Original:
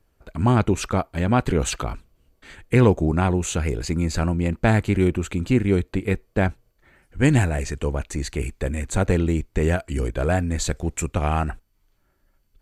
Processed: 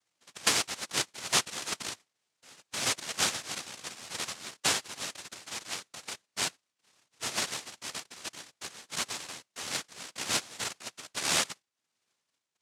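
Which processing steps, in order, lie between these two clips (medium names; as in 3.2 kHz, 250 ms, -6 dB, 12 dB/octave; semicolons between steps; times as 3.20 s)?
two resonant band-passes 1.8 kHz, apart 2.2 oct; noise-vocoded speech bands 1; trim +4 dB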